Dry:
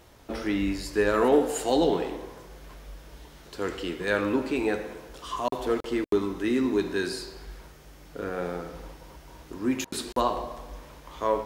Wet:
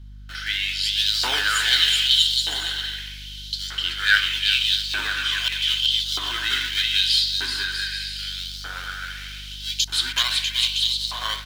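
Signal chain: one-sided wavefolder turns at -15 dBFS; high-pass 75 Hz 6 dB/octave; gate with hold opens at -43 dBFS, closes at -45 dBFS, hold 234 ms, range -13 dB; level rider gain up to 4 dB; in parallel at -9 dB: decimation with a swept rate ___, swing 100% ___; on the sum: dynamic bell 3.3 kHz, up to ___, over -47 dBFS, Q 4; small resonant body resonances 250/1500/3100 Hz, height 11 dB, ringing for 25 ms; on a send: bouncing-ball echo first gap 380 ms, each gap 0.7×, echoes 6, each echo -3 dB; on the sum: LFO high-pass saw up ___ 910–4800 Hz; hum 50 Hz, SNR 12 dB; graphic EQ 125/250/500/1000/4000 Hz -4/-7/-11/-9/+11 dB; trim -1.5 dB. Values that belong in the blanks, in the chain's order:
25×, 0.65 Hz, +5 dB, 0.81 Hz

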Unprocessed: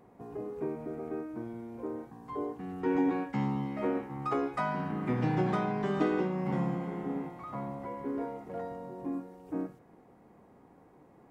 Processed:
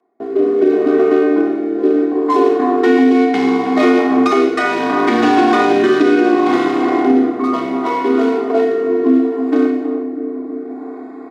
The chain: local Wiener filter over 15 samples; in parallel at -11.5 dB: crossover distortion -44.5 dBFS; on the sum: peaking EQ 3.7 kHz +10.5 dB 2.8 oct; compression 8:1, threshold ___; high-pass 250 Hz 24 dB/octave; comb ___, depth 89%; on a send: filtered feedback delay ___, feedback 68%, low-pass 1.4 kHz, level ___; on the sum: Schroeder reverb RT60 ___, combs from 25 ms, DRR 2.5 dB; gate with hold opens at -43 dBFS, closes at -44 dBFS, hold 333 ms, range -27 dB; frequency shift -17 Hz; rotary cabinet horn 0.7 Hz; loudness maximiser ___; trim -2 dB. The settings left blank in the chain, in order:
-30 dBFS, 2.7 ms, 322 ms, -9 dB, 0.95 s, +22.5 dB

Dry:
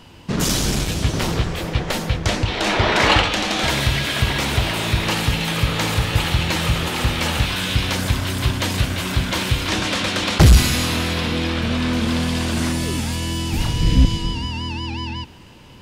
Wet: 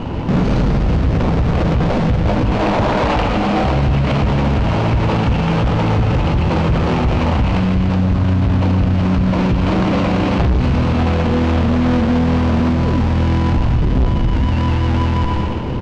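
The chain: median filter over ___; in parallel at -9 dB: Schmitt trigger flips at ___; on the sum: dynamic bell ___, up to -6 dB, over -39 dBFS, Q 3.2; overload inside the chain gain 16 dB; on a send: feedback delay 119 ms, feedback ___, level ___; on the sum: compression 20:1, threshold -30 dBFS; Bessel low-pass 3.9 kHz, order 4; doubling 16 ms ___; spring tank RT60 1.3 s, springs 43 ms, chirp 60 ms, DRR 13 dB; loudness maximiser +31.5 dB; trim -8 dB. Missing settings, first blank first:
25 samples, -31 dBFS, 360 Hz, 52%, -11.5 dB, -12 dB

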